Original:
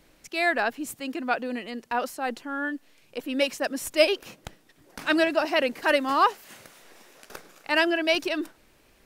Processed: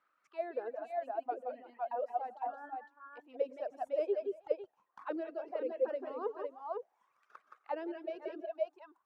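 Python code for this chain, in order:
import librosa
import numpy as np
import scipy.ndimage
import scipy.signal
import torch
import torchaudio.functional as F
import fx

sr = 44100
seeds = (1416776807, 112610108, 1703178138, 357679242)

y = fx.echo_multitap(x, sr, ms=(92, 170, 178, 329, 507), db=(-17.5, -5.5, -8.0, -14.0, -5.0))
y = fx.dereverb_blind(y, sr, rt60_s=1.5)
y = fx.auto_wah(y, sr, base_hz=440.0, top_hz=1300.0, q=10.0, full_db=-20.5, direction='down')
y = y * librosa.db_to_amplitude(1.0)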